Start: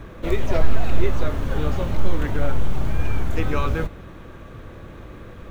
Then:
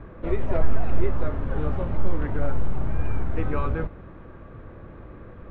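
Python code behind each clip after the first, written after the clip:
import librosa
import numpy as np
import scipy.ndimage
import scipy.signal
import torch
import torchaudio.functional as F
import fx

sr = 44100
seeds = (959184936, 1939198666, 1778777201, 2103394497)

y = scipy.signal.sosfilt(scipy.signal.butter(2, 1700.0, 'lowpass', fs=sr, output='sos'), x)
y = F.gain(torch.from_numpy(y), -3.0).numpy()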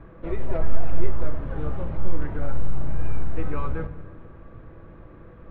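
y = fx.room_shoebox(x, sr, seeds[0], volume_m3=3600.0, walls='mixed', distance_m=0.69)
y = F.gain(torch.from_numpy(y), -4.0).numpy()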